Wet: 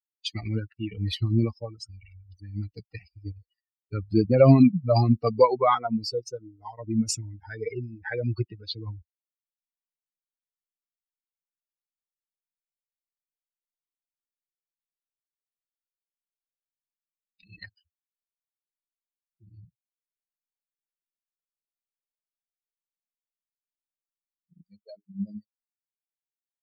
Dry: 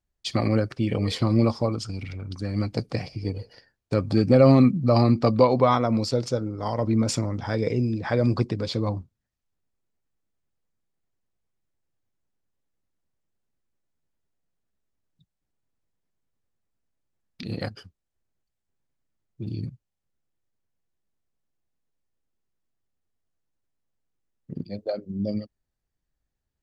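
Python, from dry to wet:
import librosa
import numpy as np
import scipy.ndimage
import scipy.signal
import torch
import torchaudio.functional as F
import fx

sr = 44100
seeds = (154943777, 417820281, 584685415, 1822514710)

y = fx.bin_expand(x, sr, power=3.0)
y = y * 10.0 ** (4.5 / 20.0)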